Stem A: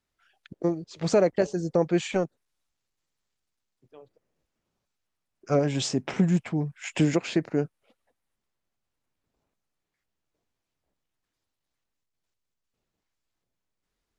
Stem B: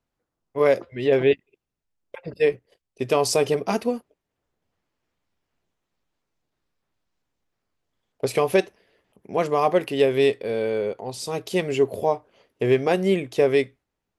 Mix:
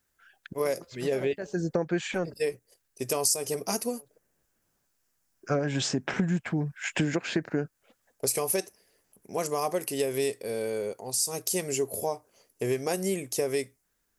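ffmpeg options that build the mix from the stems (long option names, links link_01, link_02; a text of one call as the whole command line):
ffmpeg -i stem1.wav -i stem2.wav -filter_complex "[0:a]equalizer=frequency=1600:width=4:gain=9.5,volume=1.5dB[link_01];[1:a]aexciter=amount=9:drive=5.8:freq=5100,volume=-6.5dB,asplit=2[link_02][link_03];[link_03]apad=whole_len=625719[link_04];[link_01][link_04]sidechaincompress=threshold=-42dB:ratio=12:attack=6.4:release=179[link_05];[link_05][link_02]amix=inputs=2:normalize=0,acompressor=threshold=-24dB:ratio=4" out.wav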